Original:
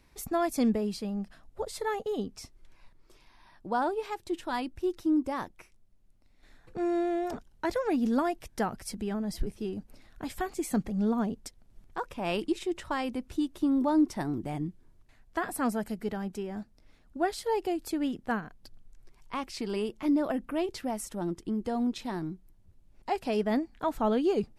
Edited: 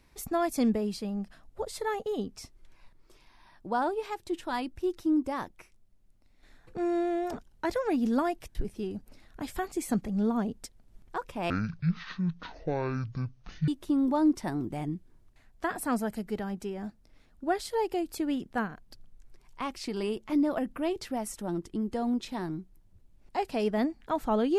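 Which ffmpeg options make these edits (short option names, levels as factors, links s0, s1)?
-filter_complex "[0:a]asplit=4[s0][s1][s2][s3];[s0]atrim=end=8.552[s4];[s1]atrim=start=9.368:end=12.324[s5];[s2]atrim=start=12.32:end=13.41,asetpts=PTS-STARTPTS,asetrate=22050,aresample=44100[s6];[s3]atrim=start=13.406[s7];[s4][s5]acrossfade=d=0.004:c1=hsin:c2=hsin[s8];[s8][s6]acrossfade=d=0.004:c1=hsin:c2=hsin[s9];[s9][s7]acrossfade=d=0.004:c1=hsin:c2=hsin"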